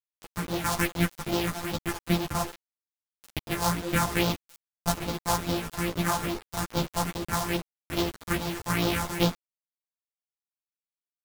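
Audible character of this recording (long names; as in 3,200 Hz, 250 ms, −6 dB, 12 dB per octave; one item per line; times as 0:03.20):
a buzz of ramps at a fixed pitch in blocks of 256 samples
phaser sweep stages 4, 2.4 Hz, lowest notch 360–1,900 Hz
a quantiser's noise floor 6 bits, dither none
a shimmering, thickened sound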